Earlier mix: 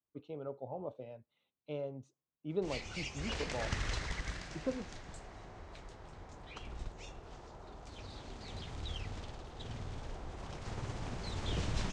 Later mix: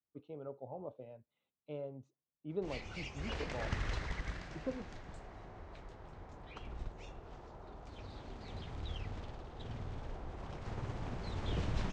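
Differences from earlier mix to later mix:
speech -3.0 dB; master: add low-pass 2.2 kHz 6 dB/octave

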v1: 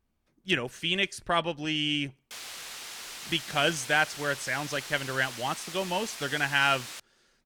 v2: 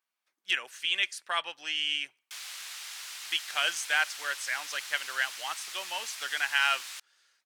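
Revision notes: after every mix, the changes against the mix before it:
master: add high-pass 1.2 kHz 12 dB/octave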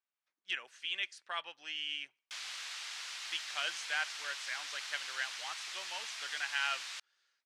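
speech -8.5 dB; master: add low-pass 6.1 kHz 12 dB/octave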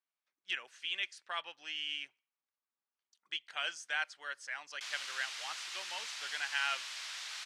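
background: entry +2.50 s

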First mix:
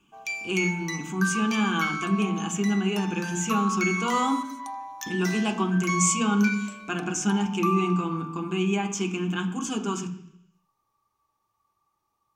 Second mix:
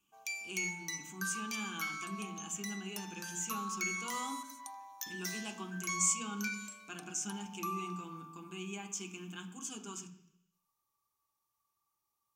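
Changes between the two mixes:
speech -5.0 dB; master: add pre-emphasis filter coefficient 0.8

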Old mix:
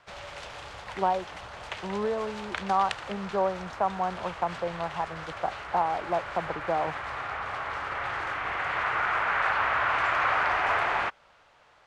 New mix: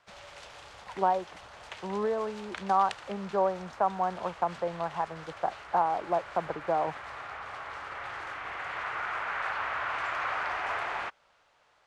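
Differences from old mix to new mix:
background -7.0 dB; master: add tone controls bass -3 dB, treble +4 dB

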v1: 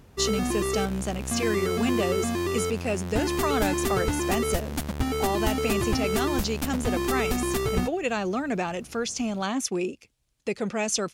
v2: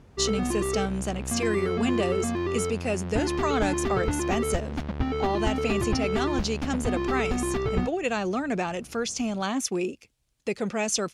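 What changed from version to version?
background: add distance through air 250 m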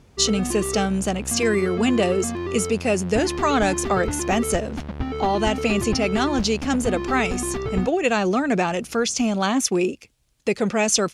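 speech +7.0 dB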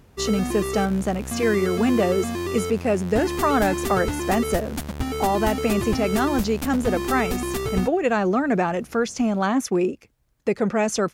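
speech: add high-order bell 5.1 kHz -9.5 dB 2.4 oct; background: remove distance through air 250 m

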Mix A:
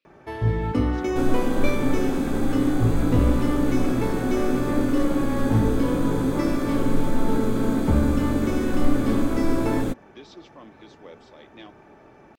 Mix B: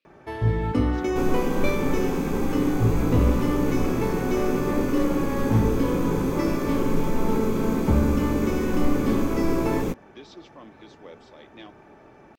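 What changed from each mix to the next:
second sound: add rippled EQ curve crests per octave 0.79, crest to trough 8 dB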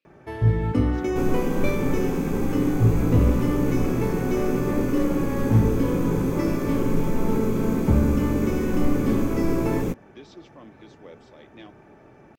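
master: add graphic EQ 125/1000/4000 Hz +4/-3/-4 dB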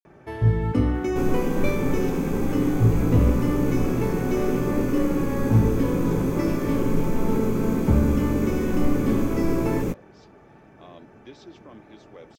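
speech: entry +1.10 s

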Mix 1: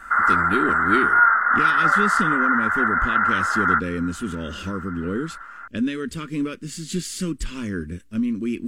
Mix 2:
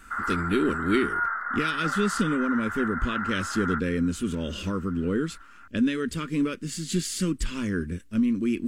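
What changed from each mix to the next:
background -12.0 dB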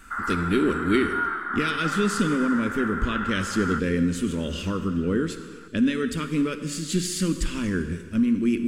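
reverb: on, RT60 1.7 s

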